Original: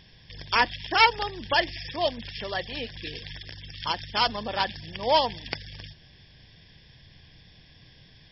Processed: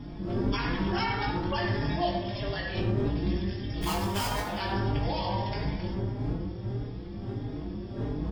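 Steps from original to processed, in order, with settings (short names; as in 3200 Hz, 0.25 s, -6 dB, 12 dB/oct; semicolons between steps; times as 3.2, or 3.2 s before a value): 3.81–4.42 half-waves squared off; wind noise 260 Hz -27 dBFS; compressor 2.5:1, threshold -22 dBFS, peak gain reduction 8.5 dB; reverb RT60 2.1 s, pre-delay 4 ms, DRR -2 dB; limiter -13.5 dBFS, peak gain reduction 8 dB; doubler 20 ms -4 dB; endless flanger 4.4 ms +1.6 Hz; gain -4.5 dB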